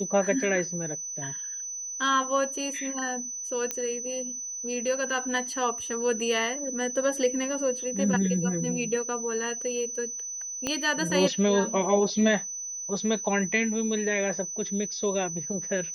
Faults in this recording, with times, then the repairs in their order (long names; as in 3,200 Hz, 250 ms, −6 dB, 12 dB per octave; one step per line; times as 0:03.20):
whistle 6,000 Hz −33 dBFS
0:03.71: click −14 dBFS
0:10.67: click −14 dBFS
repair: click removal
notch filter 6,000 Hz, Q 30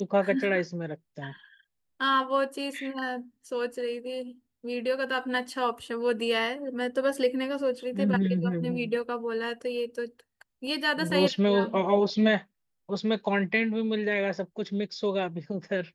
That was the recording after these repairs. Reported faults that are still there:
0:10.67: click